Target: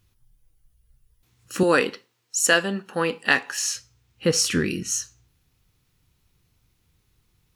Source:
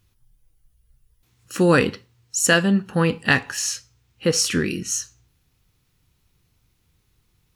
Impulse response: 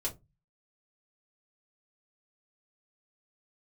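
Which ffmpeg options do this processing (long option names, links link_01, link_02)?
-filter_complex "[0:a]asettb=1/sr,asplit=3[link_01][link_02][link_03];[link_01]atrim=end=1.634[link_04];[link_02]atrim=start=1.63:end=3.75,asetpts=PTS-STARTPTS,afade=type=in:duration=0.004:curve=qsin,afade=type=out:start_time=2.116:duration=0.004:curve=qsin,highpass=340[link_05];[link_03]atrim=start=3.746[link_06];[link_04][link_05]acrossfade=duration=0.004:curve1=hsin:curve2=qsin[link_07];[link_07][link_06]acrossfade=duration=0.004:curve1=qsin:curve2=hsin,volume=-1dB"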